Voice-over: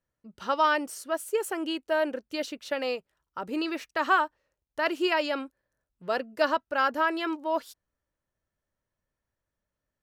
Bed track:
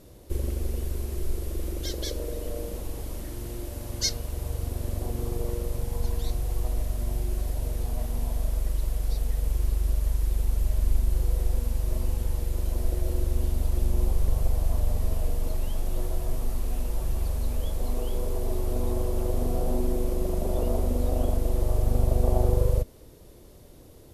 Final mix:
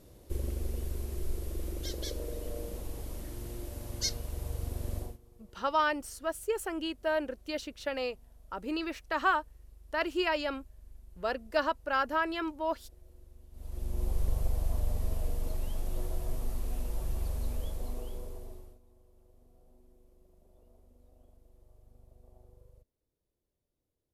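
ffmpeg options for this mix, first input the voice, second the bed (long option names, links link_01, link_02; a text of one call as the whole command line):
ffmpeg -i stem1.wav -i stem2.wav -filter_complex "[0:a]adelay=5150,volume=-4dB[link_01];[1:a]volume=17.5dB,afade=type=out:start_time=4.97:duration=0.21:silence=0.0668344,afade=type=in:start_time=13.51:duration=0.68:silence=0.0707946,afade=type=out:start_time=17.48:duration=1.31:silence=0.0316228[link_02];[link_01][link_02]amix=inputs=2:normalize=0" out.wav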